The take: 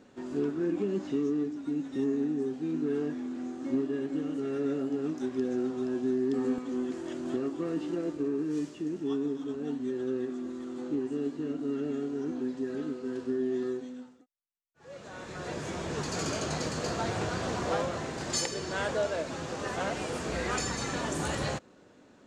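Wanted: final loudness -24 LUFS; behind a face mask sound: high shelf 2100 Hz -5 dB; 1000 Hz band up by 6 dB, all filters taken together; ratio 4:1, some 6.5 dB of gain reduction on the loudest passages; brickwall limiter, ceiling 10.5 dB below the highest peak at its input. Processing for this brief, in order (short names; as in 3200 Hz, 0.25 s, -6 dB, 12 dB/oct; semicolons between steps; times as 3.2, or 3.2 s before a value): bell 1000 Hz +9 dB; compressor 4:1, threshold -30 dBFS; limiter -29 dBFS; high shelf 2100 Hz -5 dB; gain +13.5 dB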